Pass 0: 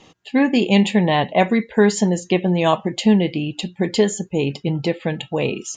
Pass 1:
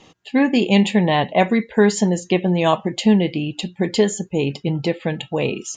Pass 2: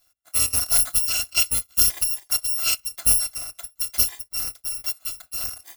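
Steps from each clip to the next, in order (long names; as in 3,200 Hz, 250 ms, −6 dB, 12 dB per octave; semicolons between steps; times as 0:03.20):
no processing that can be heard
samples in bit-reversed order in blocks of 256 samples; expander for the loud parts 1.5 to 1, over −33 dBFS; level −3.5 dB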